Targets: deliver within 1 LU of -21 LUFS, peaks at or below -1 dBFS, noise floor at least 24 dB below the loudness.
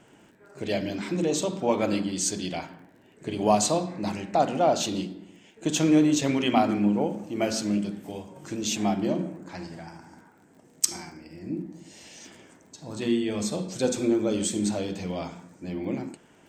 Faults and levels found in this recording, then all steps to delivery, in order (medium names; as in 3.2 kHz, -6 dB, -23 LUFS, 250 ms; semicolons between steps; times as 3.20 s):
tick rate 28 per s; loudness -26.5 LUFS; peak level -5.0 dBFS; loudness target -21.0 LUFS
-> de-click; trim +5.5 dB; peak limiter -1 dBFS